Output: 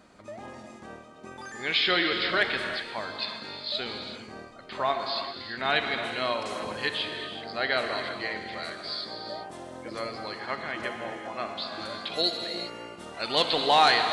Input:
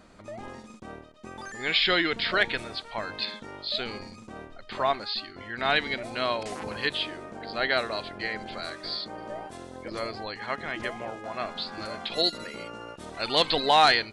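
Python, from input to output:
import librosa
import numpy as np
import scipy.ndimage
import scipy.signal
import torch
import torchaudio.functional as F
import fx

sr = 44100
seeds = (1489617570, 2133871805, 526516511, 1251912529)

y = fx.highpass(x, sr, hz=110.0, slope=6)
y = fx.rev_gated(y, sr, seeds[0], gate_ms=420, shape='flat', drr_db=4.5)
y = F.gain(torch.from_numpy(y), -1.5).numpy()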